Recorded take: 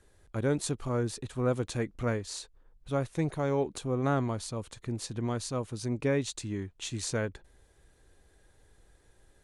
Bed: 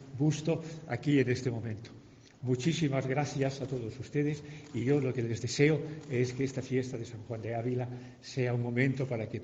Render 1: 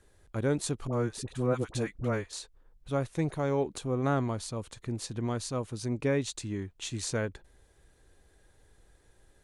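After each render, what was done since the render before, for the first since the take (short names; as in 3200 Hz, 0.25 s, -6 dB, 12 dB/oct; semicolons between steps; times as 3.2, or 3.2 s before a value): 0.87–2.33 dispersion highs, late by 58 ms, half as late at 740 Hz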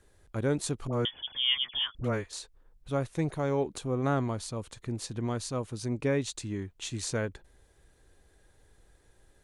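1.05–1.95 inverted band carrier 3400 Hz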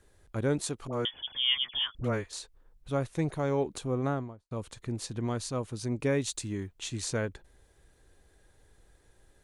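0.64–1.14 low shelf 210 Hz -8 dB; 3.91–4.51 studio fade out; 6.01–6.68 high shelf 9200 Hz +11 dB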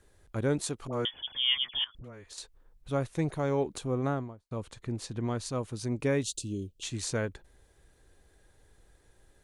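1.84–2.38 compressor 10:1, threshold -43 dBFS; 4.56–5.46 high shelf 5500 Hz -5.5 dB; 6.23–6.83 Chebyshev band-stop 580–2800 Hz, order 4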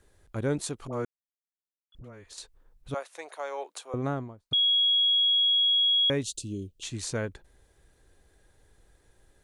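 1.05–1.92 mute; 2.94–3.94 HPF 570 Hz 24 dB/oct; 4.53–6.1 bleep 3320 Hz -20 dBFS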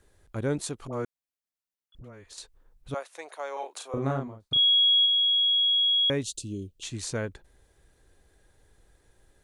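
3.53–5.06 doubler 37 ms -3 dB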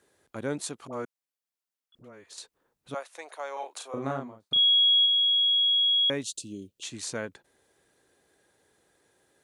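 HPF 210 Hz 12 dB/oct; dynamic EQ 390 Hz, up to -4 dB, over -48 dBFS, Q 1.9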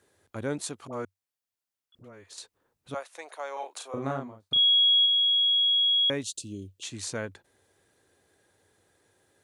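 bell 95 Hz +11 dB 0.39 oct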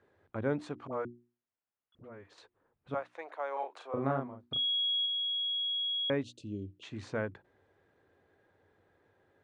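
LPF 1900 Hz 12 dB/oct; notches 60/120/180/240/300/360 Hz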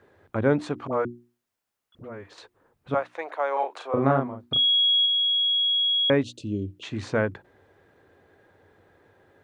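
gain +10.5 dB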